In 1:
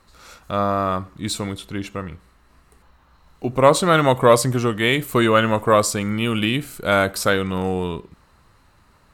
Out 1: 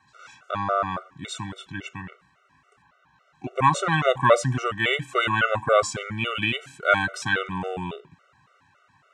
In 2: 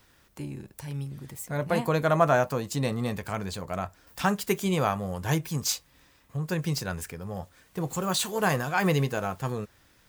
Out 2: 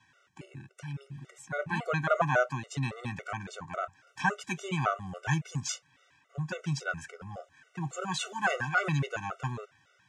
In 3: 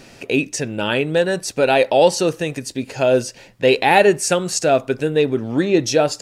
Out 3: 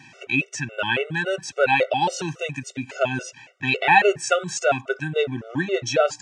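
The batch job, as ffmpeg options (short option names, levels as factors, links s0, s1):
-af "highpass=f=110:w=0.5412,highpass=f=110:w=1.3066,equalizer=f=210:t=q:w=4:g=-9,equalizer=f=320:t=q:w=4:g=-9,equalizer=f=470:t=q:w=4:g=-5,equalizer=f=1500:t=q:w=4:g=6,equalizer=f=2600:t=q:w=4:g=3,equalizer=f=4500:t=q:w=4:g=-9,lowpass=f=7000:w=0.5412,lowpass=f=7000:w=1.3066,afftfilt=real='re*gt(sin(2*PI*3.6*pts/sr)*(1-2*mod(floor(b*sr/1024/380),2)),0)':imag='im*gt(sin(2*PI*3.6*pts/sr)*(1-2*mod(floor(b*sr/1024/380),2)),0)':win_size=1024:overlap=0.75"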